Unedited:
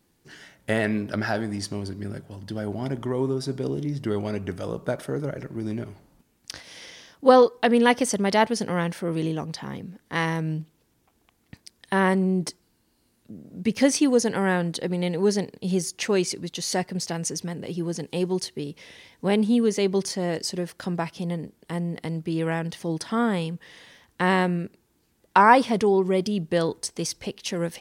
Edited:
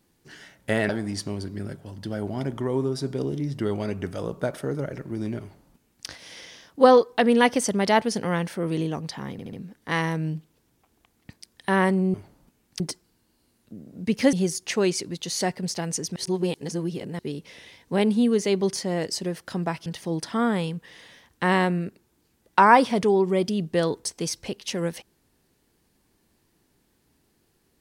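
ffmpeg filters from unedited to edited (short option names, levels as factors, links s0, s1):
-filter_complex "[0:a]asplit=11[s0][s1][s2][s3][s4][s5][s6][s7][s8][s9][s10];[s0]atrim=end=0.892[s11];[s1]atrim=start=1.338:end=9.842[s12];[s2]atrim=start=9.768:end=9.842[s13];[s3]atrim=start=9.768:end=9.842[s14];[s4]atrim=start=9.768:end=12.382[s15];[s5]atrim=start=5.858:end=6.522[s16];[s6]atrim=start=12.378:end=13.912[s17];[s7]atrim=start=15.648:end=17.482[s18];[s8]atrim=start=17.478:end=18.512,asetpts=PTS-STARTPTS,areverse[s19];[s9]atrim=start=18.508:end=21.182[s20];[s10]atrim=start=22.638[s21];[s11][s12]acrossfade=d=0.004:c1=hsin:c2=hsin[s22];[s22][s13]acrossfade=d=0.004:c1=hsin:c2=hsin[s23];[s23][s14]acrossfade=d=0.004:c1=hsin:c2=hsin[s24];[s24][s15]acrossfade=d=0.004:c1=hsin:c2=hsin[s25];[s25][s16]acrossfade=d=0.004:c1=hsin:c2=hsin[s26];[s26][s17]acrossfade=d=0.004:c1=hsin:c2=hsin[s27];[s27][s18]acrossfade=d=0.004:c1=hsin:c2=hsin[s28];[s28][s19]acrossfade=d=0.004:c1=hsin:c2=hsin[s29];[s29][s20]acrossfade=d=0.004:c1=hsin:c2=hsin[s30];[s30][s21]acrossfade=d=0.004:c1=hsin:c2=hsin"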